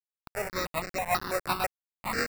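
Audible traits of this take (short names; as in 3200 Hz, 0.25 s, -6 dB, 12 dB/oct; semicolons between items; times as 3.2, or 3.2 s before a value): aliases and images of a low sample rate 3200 Hz, jitter 0%; tremolo triangle 5.5 Hz, depth 70%; a quantiser's noise floor 6-bit, dither none; notches that jump at a steady rate 6.1 Hz 880–3400 Hz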